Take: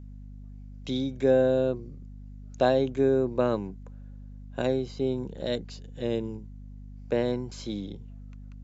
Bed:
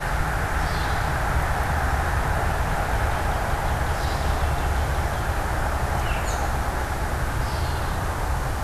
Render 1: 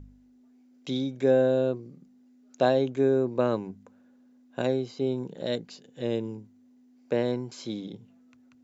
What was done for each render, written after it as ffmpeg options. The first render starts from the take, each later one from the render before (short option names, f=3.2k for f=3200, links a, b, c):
-af "bandreject=f=50:t=h:w=4,bandreject=f=100:t=h:w=4,bandreject=f=150:t=h:w=4,bandreject=f=200:t=h:w=4"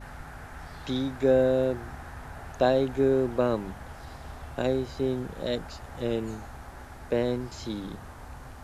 -filter_complex "[1:a]volume=-18.5dB[a];[0:a][a]amix=inputs=2:normalize=0"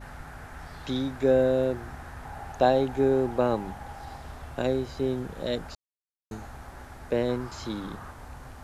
-filter_complex "[0:a]asettb=1/sr,asplit=3[a][b][c];[a]atrim=end=2.254[d];[b]atrim=start=2.25:end=4.21,asetpts=PTS-STARTPTS,afade=t=in:d=0.004:c=qsin,afade=t=out:st=1.956:d=0.004:c=qsin,equalizer=f=810:w=7.6:g=10[e];[c]atrim=start=4.206[f];[d][e]acrossfade=d=0.004:c1=hsin:c2=qsin[g];[g][f]acrossfade=d=0.004:c1=qsin:c2=hsin,asettb=1/sr,asplit=3[h][i][j];[h]atrim=end=7.294[k];[i]atrim=start=7.29:end=8.11,asetpts=PTS-STARTPTS,afade=t=in:d=0.004:c=qsin,afade=t=out:st=0.816:d=0.004:c=qsin,equalizer=f=1.2k:w=1.5:g=7.5[l];[j]atrim=start=8.106[m];[k][l]acrossfade=d=0.004:c1=hsin:c2=qsin[n];[n][m]acrossfade=d=0.004:c1=qsin:c2=hsin,asplit=3[o][p][q];[o]atrim=end=5.75,asetpts=PTS-STARTPTS,afade=t=out:st=5.746:d=0.004:c=hsin[r];[p]atrim=start=5.75:end=6.31,asetpts=PTS-STARTPTS,volume=0[s];[q]atrim=start=6.31,asetpts=PTS-STARTPTS,afade=t=in:d=0.004:c=hsin[t];[r][s][t]concat=n=3:v=0:a=1"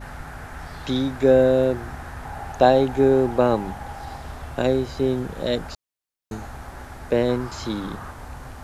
-af "volume=6dB"